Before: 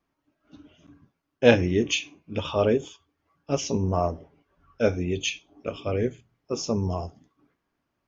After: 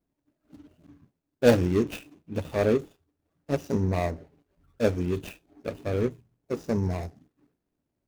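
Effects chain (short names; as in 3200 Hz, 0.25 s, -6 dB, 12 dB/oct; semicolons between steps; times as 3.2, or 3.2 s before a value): median filter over 41 samples; high shelf 5800 Hz +7.5 dB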